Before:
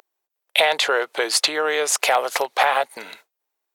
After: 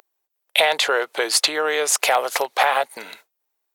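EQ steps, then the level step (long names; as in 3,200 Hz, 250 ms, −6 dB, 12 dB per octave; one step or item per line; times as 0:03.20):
high-shelf EQ 9,900 Hz +5 dB
0.0 dB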